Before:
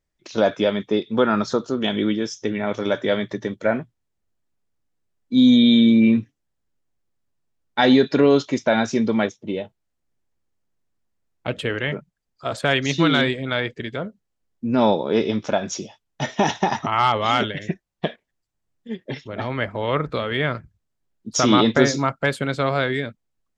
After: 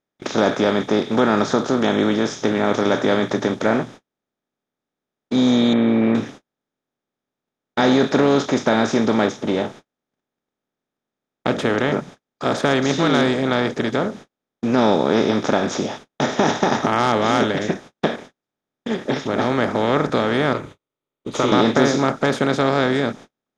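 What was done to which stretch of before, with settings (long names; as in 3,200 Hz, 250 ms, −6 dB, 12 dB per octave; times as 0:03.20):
0:05.73–0:06.15: elliptic low-pass filter 2,200 Hz, stop band 80 dB
0:20.53–0:21.52: phaser with its sweep stopped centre 1,100 Hz, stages 8
whole clip: compressor on every frequency bin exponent 0.4; noise gate −31 dBFS, range −43 dB; dynamic equaliser 2,800 Hz, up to −5 dB, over −31 dBFS, Q 1.4; level −4.5 dB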